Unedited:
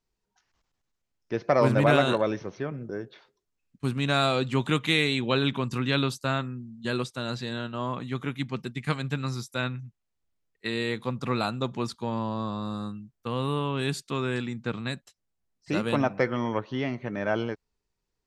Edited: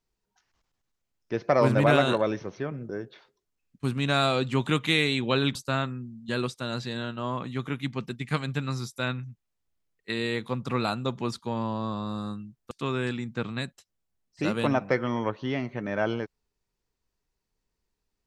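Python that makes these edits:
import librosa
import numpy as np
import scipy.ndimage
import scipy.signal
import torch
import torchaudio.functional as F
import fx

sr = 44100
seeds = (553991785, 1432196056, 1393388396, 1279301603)

y = fx.edit(x, sr, fx.cut(start_s=5.55, length_s=0.56),
    fx.cut(start_s=13.27, length_s=0.73), tone=tone)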